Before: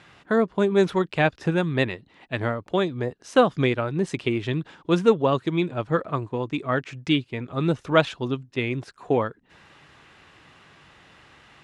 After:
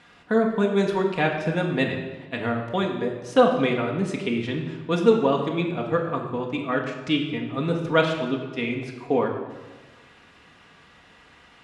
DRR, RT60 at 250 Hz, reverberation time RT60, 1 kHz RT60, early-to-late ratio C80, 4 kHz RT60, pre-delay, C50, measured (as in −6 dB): 0.0 dB, 1.6 s, 1.3 s, 1.3 s, 7.5 dB, 1.0 s, 4 ms, 5.5 dB